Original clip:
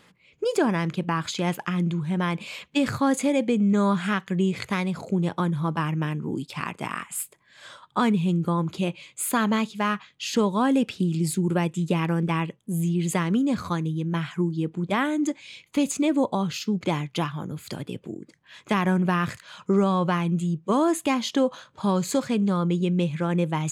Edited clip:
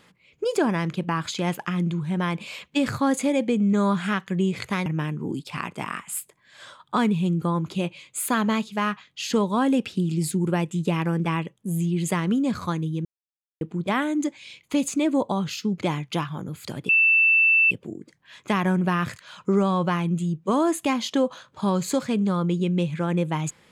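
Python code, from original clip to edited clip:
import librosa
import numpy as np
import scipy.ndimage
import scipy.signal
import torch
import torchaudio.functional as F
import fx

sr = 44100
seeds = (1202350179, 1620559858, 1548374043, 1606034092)

y = fx.edit(x, sr, fx.cut(start_s=4.86, length_s=1.03),
    fx.silence(start_s=14.08, length_s=0.56),
    fx.insert_tone(at_s=17.92, length_s=0.82, hz=2660.0, db=-14.5), tone=tone)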